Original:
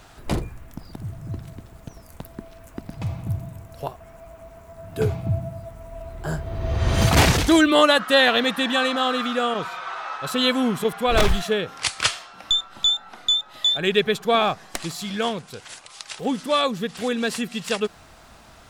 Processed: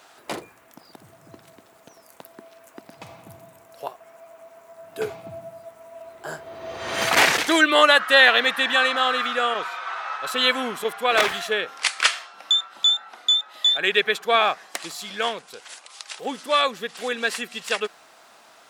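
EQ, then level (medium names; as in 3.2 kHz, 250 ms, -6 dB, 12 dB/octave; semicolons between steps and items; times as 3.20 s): high-pass 420 Hz 12 dB/octave; dynamic bell 1.9 kHz, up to +7 dB, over -36 dBFS, Q 1.1; -1.0 dB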